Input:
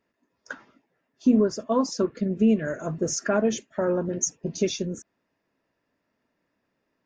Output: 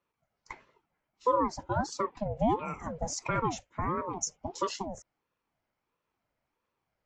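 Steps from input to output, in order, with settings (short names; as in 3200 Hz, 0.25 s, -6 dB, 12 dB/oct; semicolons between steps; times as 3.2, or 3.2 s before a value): ring modulator with a swept carrier 540 Hz, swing 45%, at 1.5 Hz; gain -4.5 dB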